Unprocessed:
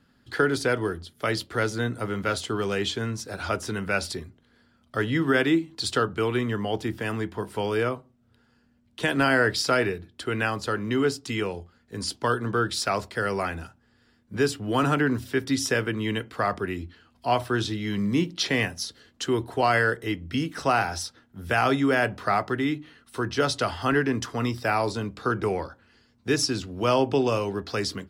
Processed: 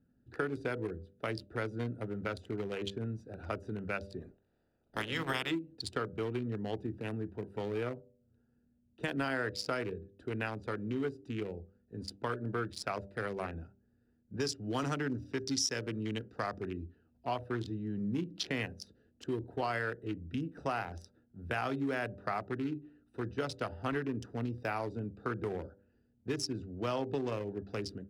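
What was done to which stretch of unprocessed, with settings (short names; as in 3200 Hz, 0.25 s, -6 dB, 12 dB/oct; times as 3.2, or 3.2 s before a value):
4.2–5.5 spectral limiter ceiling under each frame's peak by 23 dB
14.4–16.73 bell 5600 Hz +14 dB
whole clip: Wiener smoothing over 41 samples; de-hum 98.63 Hz, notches 6; compressor 3:1, threshold -25 dBFS; gain -6.5 dB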